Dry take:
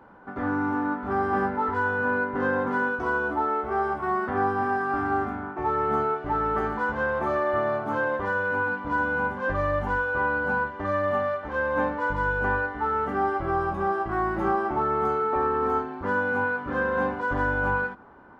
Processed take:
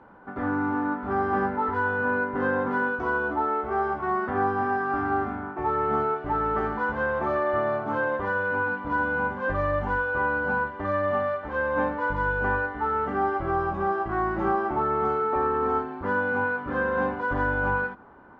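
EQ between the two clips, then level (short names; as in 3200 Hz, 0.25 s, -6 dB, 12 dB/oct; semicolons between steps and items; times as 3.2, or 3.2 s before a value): Bessel low-pass 4100 Hz, order 2; 0.0 dB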